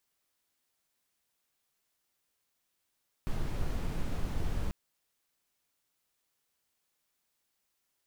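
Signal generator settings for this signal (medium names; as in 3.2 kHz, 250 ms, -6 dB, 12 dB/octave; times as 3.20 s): noise brown, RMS -31 dBFS 1.44 s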